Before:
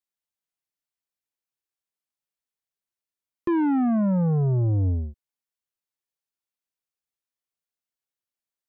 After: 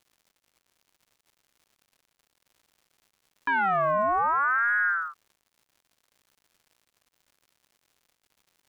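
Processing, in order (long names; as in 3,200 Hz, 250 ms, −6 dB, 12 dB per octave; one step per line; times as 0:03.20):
surface crackle 260 per second −49 dBFS
ring modulator whose carrier an LFO sweeps 1,200 Hz, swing 30%, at 0.63 Hz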